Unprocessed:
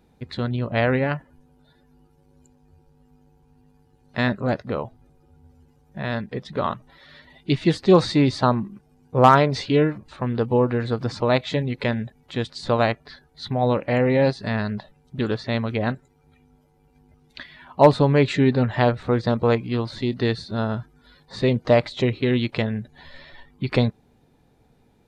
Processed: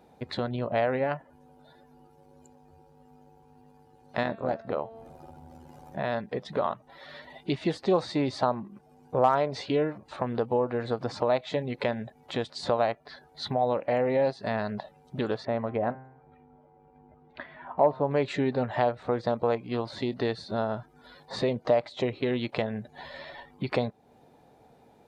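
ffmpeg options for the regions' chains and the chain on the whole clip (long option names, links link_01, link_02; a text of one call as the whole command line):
ffmpeg -i in.wav -filter_complex "[0:a]asettb=1/sr,asplit=3[link_01][link_02][link_03];[link_01]atrim=end=4.234[link_04];[link_02]atrim=start=4.23:end=5.98,asetpts=PTS-STARTPTS,afade=type=in:duration=0.004:curve=qsin,afade=type=out:start_time=1.746:duration=0.004:curve=qsin,tremolo=f=78:d=0.71,bandreject=frequency=225.2:width_type=h:width=4,bandreject=frequency=450.4:width_type=h:width=4,bandreject=frequency=675.6:width_type=h:width=4,bandreject=frequency=900.8:width_type=h:width=4,bandreject=frequency=1126:width_type=h:width=4,bandreject=frequency=1351.2:width_type=h:width=4,bandreject=frequency=1576.4:width_type=h:width=4,bandreject=frequency=1801.6:width_type=h:width=4,bandreject=frequency=2026.8:width_type=h:width=4,bandreject=frequency=2252:width_type=h:width=4,bandreject=frequency=2477.2:width_type=h:width=4,bandreject=frequency=2702.4:width_type=h:width=4,bandreject=frequency=2927.6:width_type=h:width=4,bandreject=frequency=3152.8:width_type=h:width=4,bandreject=frequency=3378:width_type=h:width=4,bandreject=frequency=3603.2:width_type=h:width=4,bandreject=frequency=3828.4:width_type=h:width=4,bandreject=frequency=4053.6:width_type=h:width=4,bandreject=frequency=4278.8:width_type=h:width=4,acompressor=mode=upward:threshold=-35dB:ratio=2.5:attack=3.2:release=140:knee=2.83:detection=peak[link_05];[link_03]atrim=start=5.976[link_06];[link_04][link_05]acrossfade=duration=0.004:curve1=hsin:curve2=qsin[link_07];[link_07][link_06]acrossfade=duration=0.004:curve1=qsin:curve2=hsin,asettb=1/sr,asplit=3[link_08][link_09][link_10];[link_08]atrim=end=15.454[link_11];[link_09]atrim=start=15.45:end=18.11,asetpts=PTS-STARTPTS,afade=type=in:duration=0.004:curve=qsin,afade=type=out:start_time=2.656:duration=0.004:curve=qsin,lowpass=1600,bandreject=frequency=131:width_type=h:width=4,bandreject=frequency=262:width_type=h:width=4,bandreject=frequency=393:width_type=h:width=4,bandreject=frequency=524:width_type=h:width=4,bandreject=frequency=655:width_type=h:width=4,bandreject=frequency=786:width_type=h:width=4,bandreject=frequency=917:width_type=h:width=4,bandreject=frequency=1048:width_type=h:width=4,bandreject=frequency=1179:width_type=h:width=4,bandreject=frequency=1310:width_type=h:width=4,bandreject=frequency=1441:width_type=h:width=4,bandreject=frequency=1572:width_type=h:width=4,bandreject=frequency=1703:width_type=h:width=4,bandreject=frequency=1834:width_type=h:width=4,bandreject=frequency=1965:width_type=h:width=4,bandreject=frequency=2096:width_type=h:width=4,bandreject=frequency=2227:width_type=h:width=4,bandreject=frequency=2358:width_type=h:width=4,bandreject=frequency=2489:width_type=h:width=4,bandreject=frequency=2620:width_type=h:width=4,bandreject=frequency=2751:width_type=h:width=4,bandreject=frequency=2882:width_type=h:width=4[link_12];[link_10]atrim=start=18.106[link_13];[link_11][link_12]acrossfade=duration=0.004:curve1=hsin:curve2=qsin[link_14];[link_14][link_13]acrossfade=duration=0.004:curve1=qsin:curve2=hsin,highpass=frequency=140:poles=1,equalizer=frequency=690:width=1.1:gain=10,acompressor=threshold=-32dB:ratio=2" out.wav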